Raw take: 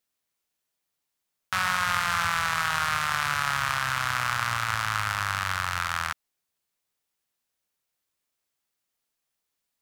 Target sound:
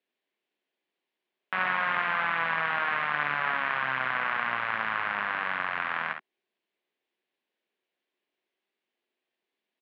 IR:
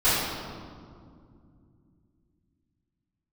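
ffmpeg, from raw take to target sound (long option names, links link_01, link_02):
-filter_complex "[0:a]acrossover=split=2500[link_01][link_02];[link_02]acompressor=threshold=-49dB:ratio=4:attack=1:release=60[link_03];[link_01][link_03]amix=inputs=2:normalize=0,highpass=frequency=210:width=0.5412,highpass=frequency=210:width=1.3066,equalizer=frequency=370:width_type=q:width=4:gain=8,equalizer=frequency=880:width_type=q:width=4:gain=-3,equalizer=frequency=1300:width_type=q:width=4:gain=-9,lowpass=frequency=3300:width=0.5412,lowpass=frequency=3300:width=1.3066,aecho=1:1:54|68:0.376|0.316,volume=3dB"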